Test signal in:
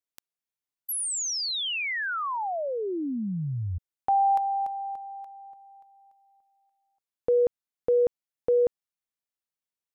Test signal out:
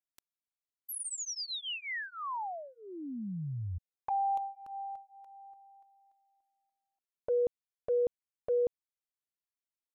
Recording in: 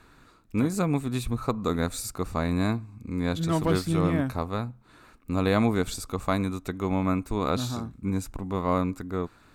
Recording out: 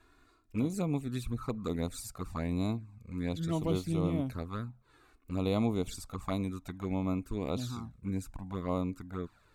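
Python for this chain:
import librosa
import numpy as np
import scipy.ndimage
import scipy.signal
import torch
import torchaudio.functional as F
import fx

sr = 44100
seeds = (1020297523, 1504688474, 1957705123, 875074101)

y = fx.env_flanger(x, sr, rest_ms=3.0, full_db=-21.0)
y = y * 10.0 ** (-6.0 / 20.0)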